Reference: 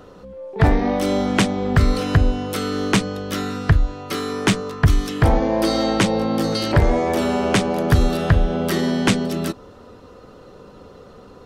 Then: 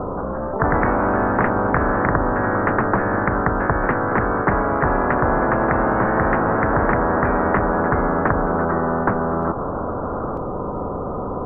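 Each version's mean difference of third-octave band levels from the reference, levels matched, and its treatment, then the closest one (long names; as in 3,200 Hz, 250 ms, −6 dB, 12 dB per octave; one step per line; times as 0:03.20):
12.5 dB: Butterworth low-pass 1,200 Hz 48 dB per octave
delay with pitch and tempo change per echo 171 ms, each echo +2 semitones, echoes 2
every bin compressed towards the loudest bin 4 to 1
level +1 dB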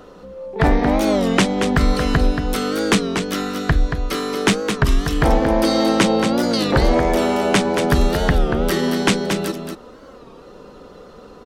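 3.5 dB: parametric band 99 Hz −11.5 dB 0.76 octaves
on a send: single-tap delay 228 ms −7 dB
on the sum: wow of a warped record 33 1/3 rpm, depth 160 cents
level +2 dB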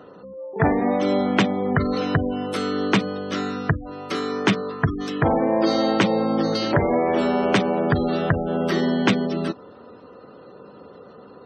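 5.0 dB: high-shelf EQ 6,200 Hz −8 dB
gate on every frequency bin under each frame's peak −30 dB strong
high-pass filter 160 Hz 12 dB per octave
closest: second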